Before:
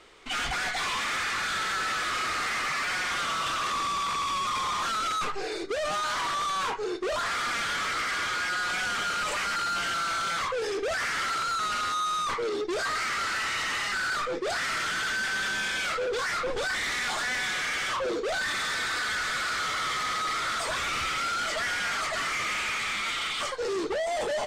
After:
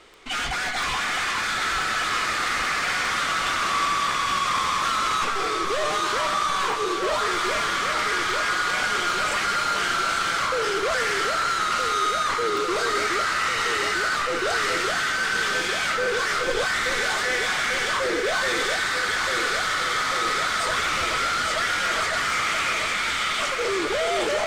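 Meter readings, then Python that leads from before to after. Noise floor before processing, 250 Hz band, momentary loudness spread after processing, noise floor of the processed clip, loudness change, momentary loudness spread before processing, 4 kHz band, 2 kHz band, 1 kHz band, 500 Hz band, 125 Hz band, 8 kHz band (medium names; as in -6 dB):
-32 dBFS, +5.5 dB, 1 LU, -26 dBFS, +5.5 dB, 2 LU, +5.0 dB, +5.5 dB, +5.5 dB, +5.5 dB, +5.5 dB, +5.0 dB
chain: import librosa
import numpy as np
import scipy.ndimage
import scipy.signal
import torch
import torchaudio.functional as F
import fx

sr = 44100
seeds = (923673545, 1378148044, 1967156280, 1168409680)

y = fx.echo_alternate(x, sr, ms=423, hz=2000.0, feedback_pct=85, wet_db=-4.0)
y = fx.dmg_crackle(y, sr, seeds[0], per_s=10.0, level_db=-33.0)
y = F.gain(torch.from_numpy(y), 3.0).numpy()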